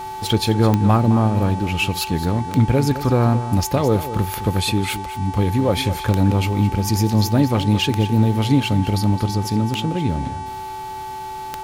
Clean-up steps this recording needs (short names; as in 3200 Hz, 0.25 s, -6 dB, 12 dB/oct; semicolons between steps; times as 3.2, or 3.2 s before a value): de-click; de-hum 381.4 Hz, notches 28; notch 870 Hz, Q 30; inverse comb 0.213 s -12.5 dB